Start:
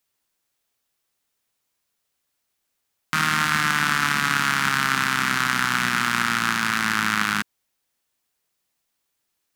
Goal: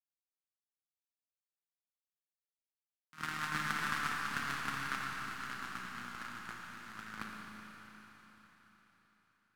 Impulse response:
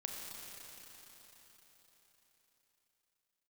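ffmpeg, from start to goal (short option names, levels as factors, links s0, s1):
-filter_complex "[0:a]agate=range=0.00708:threshold=0.158:ratio=16:detection=peak[s0];[1:a]atrim=start_sample=2205[s1];[s0][s1]afir=irnorm=-1:irlink=0,volume=3.16"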